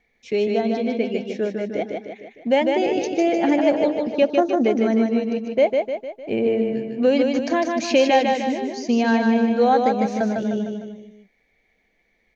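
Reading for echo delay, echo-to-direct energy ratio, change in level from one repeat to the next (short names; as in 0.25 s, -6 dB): 0.152 s, -2.5 dB, -6.0 dB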